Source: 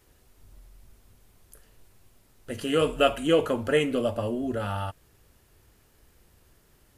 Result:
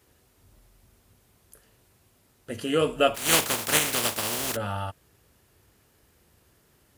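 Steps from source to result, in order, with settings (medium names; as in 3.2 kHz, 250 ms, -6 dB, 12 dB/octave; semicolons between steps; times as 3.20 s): 3.14–4.55 s: spectral contrast reduction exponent 0.22; high-pass 70 Hz 12 dB/octave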